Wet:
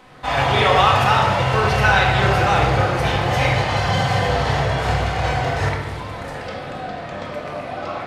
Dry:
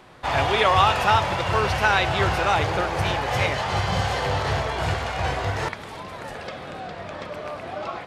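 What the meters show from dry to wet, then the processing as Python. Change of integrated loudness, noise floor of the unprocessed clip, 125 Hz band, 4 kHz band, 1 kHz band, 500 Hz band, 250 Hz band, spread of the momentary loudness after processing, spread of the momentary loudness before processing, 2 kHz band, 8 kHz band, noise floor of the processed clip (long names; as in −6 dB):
+4.5 dB, −38 dBFS, +7.0 dB, +3.5 dB, +4.0 dB, +4.5 dB, +6.0 dB, 15 LU, 16 LU, +4.5 dB, +2.5 dB, −31 dBFS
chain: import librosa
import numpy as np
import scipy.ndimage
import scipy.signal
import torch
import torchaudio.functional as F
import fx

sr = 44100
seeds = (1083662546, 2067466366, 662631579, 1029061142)

y = fx.room_shoebox(x, sr, seeds[0], volume_m3=930.0, walls='mixed', distance_m=2.0)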